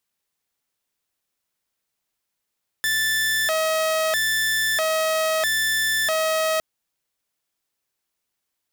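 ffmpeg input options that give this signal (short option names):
-f lavfi -i "aevalsrc='0.141*(2*mod((1198*t+562/0.77*(0.5-abs(mod(0.77*t,1)-0.5))),1)-1)':d=3.76:s=44100"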